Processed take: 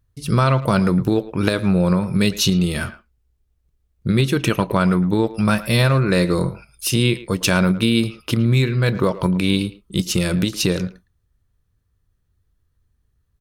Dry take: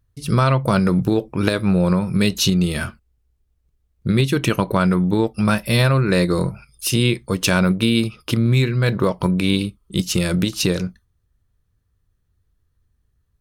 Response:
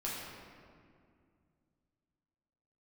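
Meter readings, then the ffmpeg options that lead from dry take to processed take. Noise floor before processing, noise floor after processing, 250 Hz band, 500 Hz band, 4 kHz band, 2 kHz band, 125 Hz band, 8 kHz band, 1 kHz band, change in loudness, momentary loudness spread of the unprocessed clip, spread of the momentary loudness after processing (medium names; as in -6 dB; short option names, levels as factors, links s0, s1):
-68 dBFS, -68 dBFS, 0.0 dB, 0.0 dB, 0.0 dB, 0.0 dB, 0.0 dB, 0.0 dB, 0.0 dB, 0.0 dB, 6 LU, 6 LU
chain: -filter_complex "[0:a]asplit=2[s0][s1];[s1]adelay=110,highpass=300,lowpass=3400,asoftclip=type=hard:threshold=0.282,volume=0.178[s2];[s0][s2]amix=inputs=2:normalize=0"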